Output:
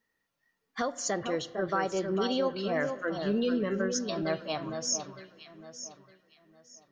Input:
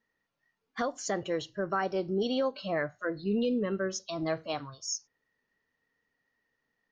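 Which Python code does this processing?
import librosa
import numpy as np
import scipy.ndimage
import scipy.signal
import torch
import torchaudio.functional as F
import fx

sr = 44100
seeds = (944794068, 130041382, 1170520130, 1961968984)

p1 = fx.high_shelf(x, sr, hz=5200.0, db=7.0)
p2 = p1 + fx.echo_alternate(p1, sr, ms=455, hz=1600.0, feedback_pct=51, wet_db=-6.0, dry=0)
y = fx.rev_spring(p2, sr, rt60_s=2.1, pass_ms=(32, 48), chirp_ms=45, drr_db=17.0)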